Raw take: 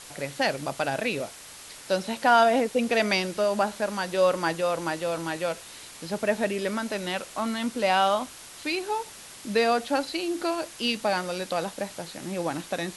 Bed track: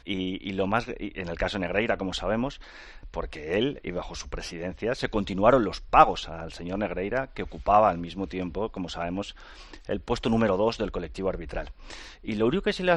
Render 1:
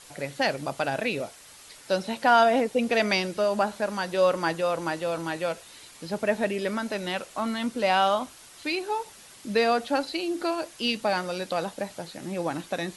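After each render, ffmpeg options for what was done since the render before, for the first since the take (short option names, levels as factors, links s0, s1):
-af "afftdn=nr=6:nf=-45"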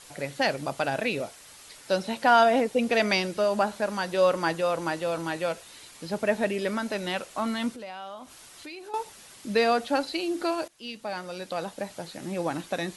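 -filter_complex "[0:a]asettb=1/sr,asplit=3[s0][s1][s2];[s0]atrim=end=7.724[s3];[s1]atrim=start=7.72:end=8.94,asetpts=PTS-STARTPTS,afade=t=in:d=0.004:c=qsin,afade=t=out:st=1.216:d=0.004:c=qsin,acompressor=threshold=0.00794:ratio=3:attack=3.2:release=140:knee=1:detection=peak[s4];[s2]atrim=start=8.936[s5];[s3][s4]acrossfade=d=0.004:c1=hsin:c2=qsin[s6];[s6][s5]acrossfade=d=0.004:c1=qsin:c2=hsin,asplit=2[s7][s8];[s7]atrim=end=10.68,asetpts=PTS-STARTPTS,afade=t=out:st=10.676:d=0.004:c=hsin:silence=0.141254[s9];[s8]atrim=start=10.68,asetpts=PTS-STARTPTS,afade=t=in:d=1.45:silence=0.141254[s10];[s9][s10]concat=n=2:v=0:a=1"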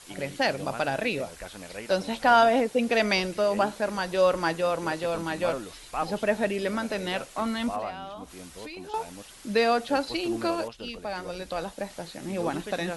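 -filter_complex "[1:a]volume=0.211[s0];[0:a][s0]amix=inputs=2:normalize=0"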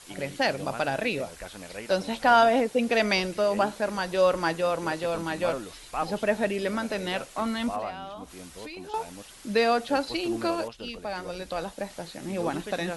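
-af anull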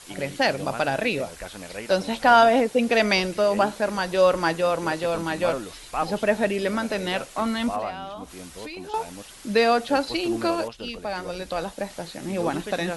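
-af "volume=1.5"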